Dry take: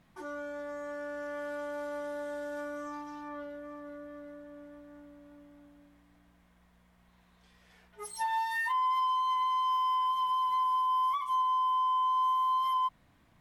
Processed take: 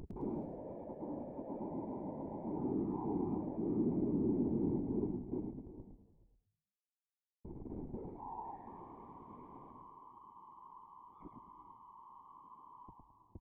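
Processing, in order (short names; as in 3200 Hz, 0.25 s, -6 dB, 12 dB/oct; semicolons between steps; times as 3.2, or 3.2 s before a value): reverb removal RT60 1.6 s; HPF 42 Hz 6 dB/oct; in parallel at +0.5 dB: compressor 6:1, threshold -43 dBFS, peak gain reduction 13.5 dB; on the sum: Schmitt trigger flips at -51.5 dBFS; 8.45–9.72 requantised 6-bit, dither triangular; vocal tract filter u; whisperiser; on a send: frequency-shifting echo 0.107 s, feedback 31%, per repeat -54 Hz, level -4 dB; on the sum: non-linear reverb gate 0.46 s rising, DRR 11 dB; gain +2 dB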